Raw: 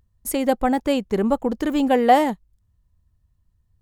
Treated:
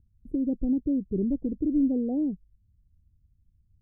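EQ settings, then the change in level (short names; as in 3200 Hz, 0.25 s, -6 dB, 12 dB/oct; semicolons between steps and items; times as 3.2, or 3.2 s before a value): inverse Chebyshev low-pass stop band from 1100 Hz, stop band 60 dB; dynamic EQ 220 Hz, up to -7 dB, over -41 dBFS, Q 5.1; 0.0 dB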